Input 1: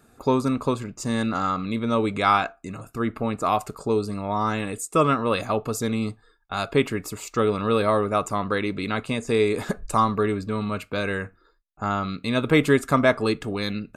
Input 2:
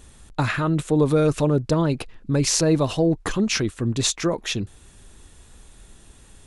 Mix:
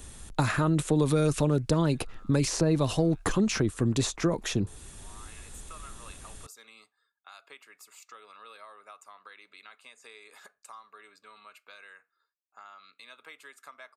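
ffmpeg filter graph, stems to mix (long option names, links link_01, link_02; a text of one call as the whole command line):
ffmpeg -i stem1.wav -i stem2.wav -filter_complex "[0:a]highpass=1100,acompressor=threshold=-35dB:ratio=3,adelay=750,volume=-13dB,afade=type=in:start_time=4.99:duration=0.38:silence=0.298538[link_01];[1:a]highshelf=frequency=7400:gain=6.5,volume=1.5dB[link_02];[link_01][link_02]amix=inputs=2:normalize=0,acrossover=split=220|1500|5200[link_03][link_04][link_05][link_06];[link_03]acompressor=threshold=-27dB:ratio=4[link_07];[link_04]acompressor=threshold=-26dB:ratio=4[link_08];[link_05]acompressor=threshold=-40dB:ratio=4[link_09];[link_06]acompressor=threshold=-38dB:ratio=4[link_10];[link_07][link_08][link_09][link_10]amix=inputs=4:normalize=0" out.wav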